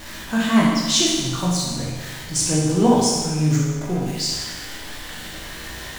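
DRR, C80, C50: −6.0 dB, 2.5 dB, −0.5 dB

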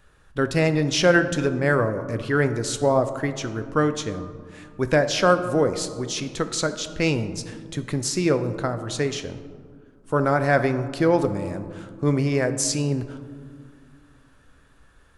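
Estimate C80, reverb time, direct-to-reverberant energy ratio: 12.5 dB, 2.0 s, 9.0 dB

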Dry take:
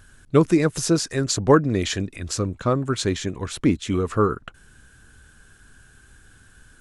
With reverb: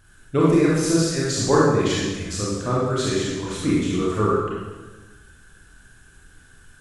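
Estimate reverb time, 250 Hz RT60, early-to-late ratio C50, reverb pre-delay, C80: 1.2 s, 1.5 s, −2.0 dB, 26 ms, 1.5 dB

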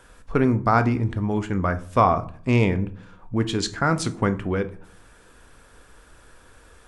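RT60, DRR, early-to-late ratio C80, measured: 0.50 s, 10.0 dB, 21.0 dB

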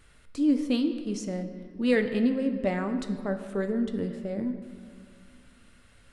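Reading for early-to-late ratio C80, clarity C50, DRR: 10.0 dB, 9.0 dB, 6.5 dB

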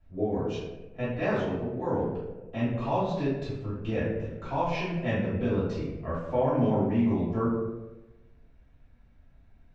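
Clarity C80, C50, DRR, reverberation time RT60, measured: 4.0 dB, 0.5 dB, −11.5 dB, 1.1 s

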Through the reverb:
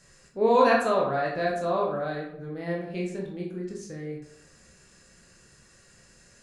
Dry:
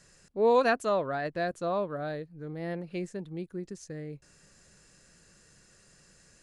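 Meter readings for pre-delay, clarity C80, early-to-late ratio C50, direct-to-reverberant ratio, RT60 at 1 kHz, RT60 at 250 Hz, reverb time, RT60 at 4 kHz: 14 ms, 7.5 dB, 4.5 dB, −3.0 dB, 0.75 s, 0.70 s, 0.75 s, 0.45 s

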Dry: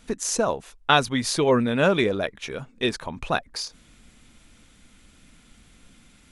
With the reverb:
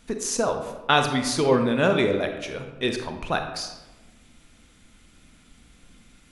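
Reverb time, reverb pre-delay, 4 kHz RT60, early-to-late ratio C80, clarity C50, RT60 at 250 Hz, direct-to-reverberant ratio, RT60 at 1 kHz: 1.1 s, 31 ms, 0.65 s, 9.0 dB, 6.5 dB, 1.3 s, 5.0 dB, 1.1 s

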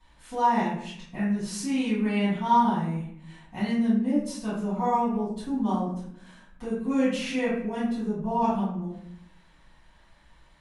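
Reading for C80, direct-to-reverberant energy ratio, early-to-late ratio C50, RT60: 6.0 dB, −11.5 dB, 1.5 dB, 0.70 s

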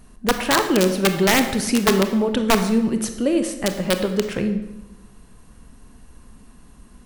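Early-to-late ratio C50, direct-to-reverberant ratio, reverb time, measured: 9.0 dB, 7.0 dB, 1.1 s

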